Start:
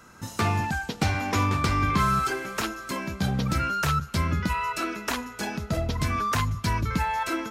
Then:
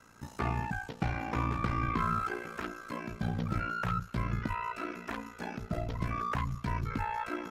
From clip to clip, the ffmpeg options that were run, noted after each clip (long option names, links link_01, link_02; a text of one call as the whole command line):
ffmpeg -i in.wav -filter_complex "[0:a]acrossover=split=2600[link_01][link_02];[link_02]acompressor=threshold=-49dB:ratio=4:attack=1:release=60[link_03];[link_01][link_03]amix=inputs=2:normalize=0,aeval=exprs='val(0)*sin(2*PI*29*n/s)':channel_layout=same,volume=-4.5dB" out.wav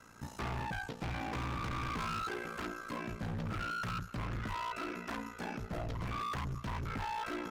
ffmpeg -i in.wav -af "volume=36dB,asoftclip=hard,volume=-36dB,volume=1dB" out.wav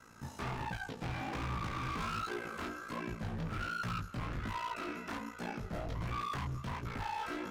ffmpeg -i in.wav -af "flanger=delay=16.5:depth=7.9:speed=1.3,volume=2.5dB" out.wav